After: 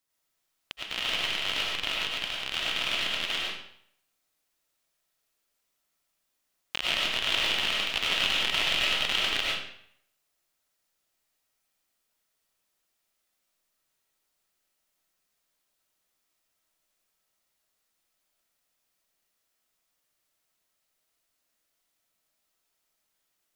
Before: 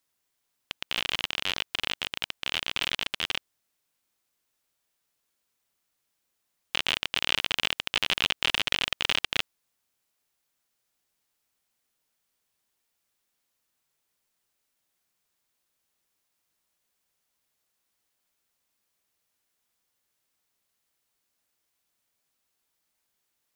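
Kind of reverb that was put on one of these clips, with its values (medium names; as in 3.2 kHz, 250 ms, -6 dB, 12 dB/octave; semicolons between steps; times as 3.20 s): algorithmic reverb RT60 0.67 s, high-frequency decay 0.9×, pre-delay 60 ms, DRR -4.5 dB; trim -4.5 dB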